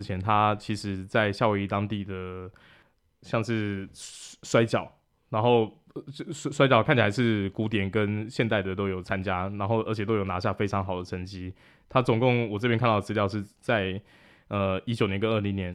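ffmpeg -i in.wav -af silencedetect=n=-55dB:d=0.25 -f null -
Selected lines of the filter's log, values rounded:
silence_start: 2.86
silence_end: 3.23 | silence_duration: 0.36
silence_start: 4.94
silence_end: 5.32 | silence_duration: 0.37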